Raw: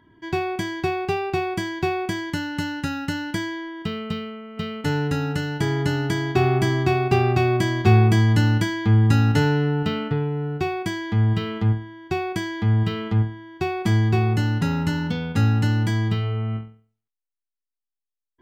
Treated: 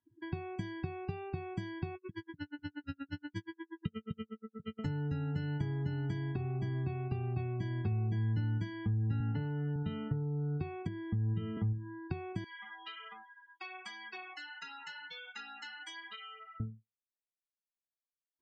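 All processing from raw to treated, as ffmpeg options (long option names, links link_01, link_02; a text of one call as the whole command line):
ffmpeg -i in.wav -filter_complex "[0:a]asettb=1/sr,asplit=3[link_01][link_02][link_03];[link_01]atrim=end=1.954[link_04];[link_02]atrim=start=1.95:end=4.79,asetpts=PTS-STARTPTS,afade=type=in:duration=0.004:curve=qsin,afade=type=out:start_time=2.836:duration=0.004:curve=qsin,asuperstop=centerf=740:order=4:qfactor=2.4,aeval=exprs='val(0)*pow(10,-40*(0.5-0.5*cos(2*PI*8.4*n/s))/20)':channel_layout=same[link_05];[link_03]atrim=start=4.786[link_06];[link_04][link_05]acrossfade=duration=0.004:curve1=hsin:curve2=qsin[link_07];[link_07][link_06]acrossfade=duration=0.004:curve1=qsin:curve2=hsin,asettb=1/sr,asplit=3[link_08][link_09][link_10];[link_08]atrim=end=9.204[link_11];[link_09]atrim=start=9.2:end=9.76,asetpts=PTS-STARTPTS,afade=type=in:duration=0.004:curve=qsin,afade=type=out:start_time=0.556:duration=0.004:curve=qsin,aeval=exprs='val(0)+0.5*0.0473*sgn(val(0))':channel_layout=same,highpass=120,lowpass=4300[link_12];[link_10]atrim=start=9.756[link_13];[link_11][link_12]acrossfade=duration=0.004:curve1=hsin:curve2=qsin[link_14];[link_14][link_13]acrossfade=duration=0.004:curve1=qsin:curve2=hsin,asettb=1/sr,asplit=3[link_15][link_16][link_17];[link_15]atrim=end=10.874[link_18];[link_16]atrim=start=10.87:end=11.57,asetpts=PTS-STARTPTS,afade=type=in:duration=0.004:curve=qsin,afade=type=out:start_time=0.696:duration=0.004:curve=qsin,equalizer=frequency=360:width_type=o:width=0.44:gain=4.5,acrossover=split=250|4900[link_19][link_20][link_21];[link_19]acompressor=threshold=-23dB:ratio=4[link_22];[link_20]acompressor=threshold=-34dB:ratio=4[link_23];[link_21]acompressor=threshold=-57dB:ratio=4[link_24];[link_22][link_23][link_24]amix=inputs=3:normalize=0[link_25];[link_17]atrim=start=11.566[link_26];[link_18][link_25]acrossfade=duration=0.004:curve1=hsin:curve2=qsin[link_27];[link_27][link_26]acrossfade=duration=0.004:curve1=qsin:curve2=hsin,asettb=1/sr,asplit=3[link_28][link_29][link_30];[link_28]atrim=end=12.444[link_31];[link_29]atrim=start=12.44:end=16.6,asetpts=PTS-STARTPTS,afade=type=in:duration=0.004:curve=qsin,afade=type=out:start_time=4.156:duration=0.004:curve=qsin,highpass=1200,flanger=delay=3.8:depth=2.6:regen=-6:speed=1.3:shape=sinusoidal[link_32];[link_30]atrim=start=16.596[link_33];[link_31][link_32]acrossfade=duration=0.004:curve1=hsin:curve2=qsin[link_34];[link_34][link_33]acrossfade=duration=0.004:curve1=qsin:curve2=hsin,acompressor=threshold=-28dB:ratio=16,afftdn=noise_reduction=35:noise_floor=-39,acrossover=split=200[link_35][link_36];[link_36]acompressor=threshold=-45dB:ratio=4[link_37];[link_35][link_37]amix=inputs=2:normalize=0" out.wav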